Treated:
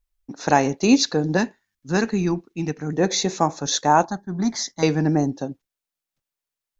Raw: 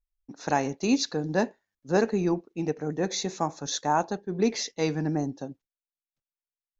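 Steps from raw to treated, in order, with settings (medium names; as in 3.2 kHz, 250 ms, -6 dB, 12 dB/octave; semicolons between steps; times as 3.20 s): 1.37–2.93 s: peaking EQ 550 Hz -12.5 dB 1.3 oct; 4.05–4.83 s: static phaser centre 1.1 kHz, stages 4; trim +8 dB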